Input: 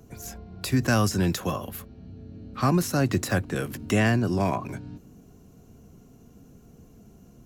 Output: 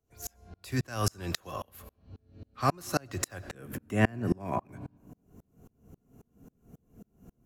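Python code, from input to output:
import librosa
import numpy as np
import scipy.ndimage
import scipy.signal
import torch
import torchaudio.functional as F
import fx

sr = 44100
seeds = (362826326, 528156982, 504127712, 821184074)

y = fx.peak_eq(x, sr, hz=fx.steps((0.0, 200.0), (3.55, 4600.0)), db=-10.0, octaves=1.3)
y = fx.rev_freeverb(y, sr, rt60_s=1.2, hf_ratio=0.55, predelay_ms=50, drr_db=17.5)
y = fx.tremolo_decay(y, sr, direction='swelling', hz=3.7, depth_db=34)
y = F.gain(torch.from_numpy(y), 3.5).numpy()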